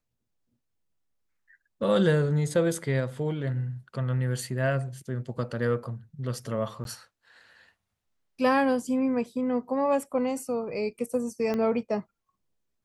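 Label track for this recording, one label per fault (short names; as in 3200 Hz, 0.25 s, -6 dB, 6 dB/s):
6.840000	6.850000	gap 12 ms
11.540000	11.540000	pop -18 dBFS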